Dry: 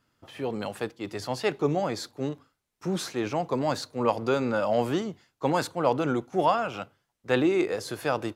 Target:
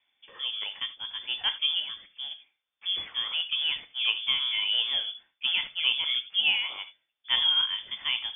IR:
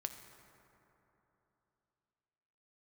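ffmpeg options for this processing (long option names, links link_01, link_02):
-filter_complex "[0:a]asettb=1/sr,asplit=3[link_01][link_02][link_03];[link_01]atrim=end=1.804[link_04];[link_02]atrim=start=1.8:end=2.31,asetpts=PTS-STARTPTS,afade=type=in:duration=0.004:curve=qsin,afade=type=out:start_time=0.506:duration=0.004:curve=qsin,acrossover=split=460|2100[link_05][link_06][link_07];[link_05]acompressor=threshold=-34dB:ratio=4[link_08];[link_06]acompressor=threshold=-43dB:ratio=4[link_09];[link_07]acompressor=threshold=-43dB:ratio=4[link_10];[link_08][link_09][link_10]amix=inputs=3:normalize=0[link_11];[link_03]atrim=start=2.306[link_12];[link_04][link_11]acrossfade=duration=0.004:curve1=hsin:curve2=qsin[link_13];[link_13][link_12]acrossfade=duration=0.004:curve1=qsin:curve2=hsin[link_14];[1:a]atrim=start_sample=2205,atrim=end_sample=3969[link_15];[link_14][link_15]afir=irnorm=-1:irlink=0,lowpass=frequency=3100:width_type=q:width=0.5098,lowpass=frequency=3100:width_type=q:width=0.6013,lowpass=frequency=3100:width_type=q:width=0.9,lowpass=frequency=3100:width_type=q:width=2.563,afreqshift=-3600"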